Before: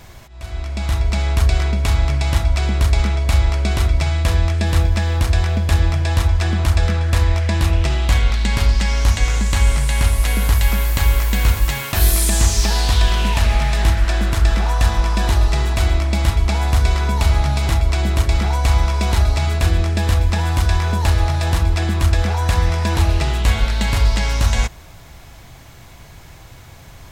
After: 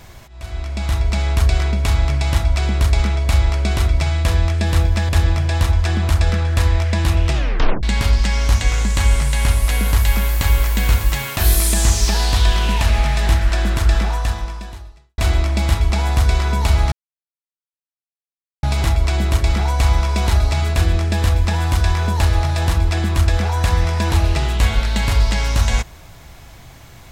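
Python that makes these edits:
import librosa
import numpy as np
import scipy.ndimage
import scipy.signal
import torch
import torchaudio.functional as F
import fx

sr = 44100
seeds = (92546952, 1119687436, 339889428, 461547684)

y = fx.edit(x, sr, fx.cut(start_s=5.09, length_s=0.56),
    fx.tape_stop(start_s=7.9, length_s=0.49),
    fx.fade_out_span(start_s=14.55, length_s=1.19, curve='qua'),
    fx.insert_silence(at_s=17.48, length_s=1.71), tone=tone)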